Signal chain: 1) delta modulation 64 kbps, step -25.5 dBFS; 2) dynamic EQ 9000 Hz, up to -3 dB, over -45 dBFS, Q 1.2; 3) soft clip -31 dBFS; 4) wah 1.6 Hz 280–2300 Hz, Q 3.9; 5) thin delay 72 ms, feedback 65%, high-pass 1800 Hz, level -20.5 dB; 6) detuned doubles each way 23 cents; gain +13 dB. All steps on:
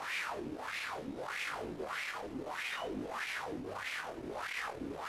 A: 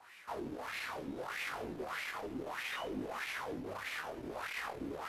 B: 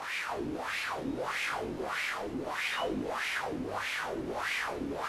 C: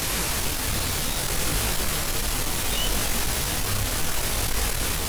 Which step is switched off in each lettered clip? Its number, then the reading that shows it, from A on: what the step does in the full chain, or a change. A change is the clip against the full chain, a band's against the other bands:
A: 1, 125 Hz band +1.5 dB; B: 3, distortion -8 dB; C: 4, 8 kHz band +18.5 dB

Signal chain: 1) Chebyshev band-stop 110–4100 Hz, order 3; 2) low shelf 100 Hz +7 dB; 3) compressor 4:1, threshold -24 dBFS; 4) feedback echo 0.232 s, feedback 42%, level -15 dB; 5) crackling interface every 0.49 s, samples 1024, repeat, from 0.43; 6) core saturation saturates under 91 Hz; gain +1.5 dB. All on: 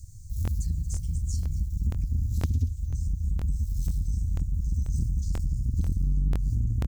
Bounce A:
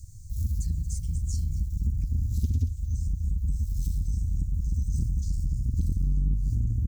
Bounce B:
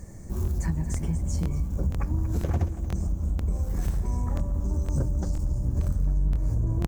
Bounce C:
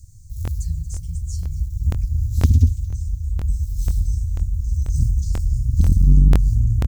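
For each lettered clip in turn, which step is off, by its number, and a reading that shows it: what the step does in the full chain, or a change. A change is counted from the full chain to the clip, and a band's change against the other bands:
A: 5, 4 kHz band -2.0 dB; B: 1, 500 Hz band +8.5 dB; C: 3, mean gain reduction 5.5 dB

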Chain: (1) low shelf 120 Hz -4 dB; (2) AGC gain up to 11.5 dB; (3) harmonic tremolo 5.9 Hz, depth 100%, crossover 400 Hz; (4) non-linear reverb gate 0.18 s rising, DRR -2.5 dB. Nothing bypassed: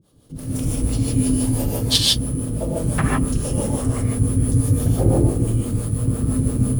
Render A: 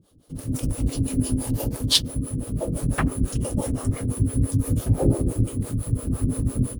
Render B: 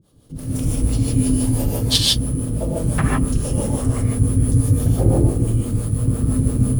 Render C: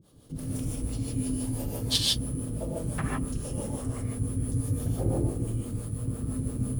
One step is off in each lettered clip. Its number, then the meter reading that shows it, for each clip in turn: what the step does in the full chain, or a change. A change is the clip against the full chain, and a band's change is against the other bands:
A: 4, crest factor change +4.5 dB; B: 1, 125 Hz band +2.0 dB; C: 2, crest factor change +2.0 dB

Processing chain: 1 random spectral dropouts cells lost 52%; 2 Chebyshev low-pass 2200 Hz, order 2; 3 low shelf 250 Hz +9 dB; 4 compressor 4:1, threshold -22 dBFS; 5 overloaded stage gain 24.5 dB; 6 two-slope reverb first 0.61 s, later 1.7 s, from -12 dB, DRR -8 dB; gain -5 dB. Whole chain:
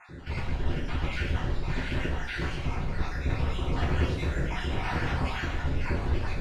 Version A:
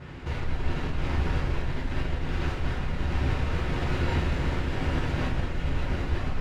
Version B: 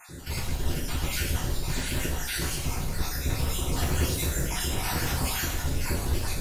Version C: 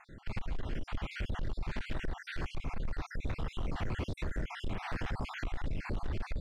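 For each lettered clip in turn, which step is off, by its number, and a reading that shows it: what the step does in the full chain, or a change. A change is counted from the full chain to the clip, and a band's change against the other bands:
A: 1, 2 kHz band -2.5 dB; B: 2, 4 kHz band +7.0 dB; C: 6, crest factor change -9.0 dB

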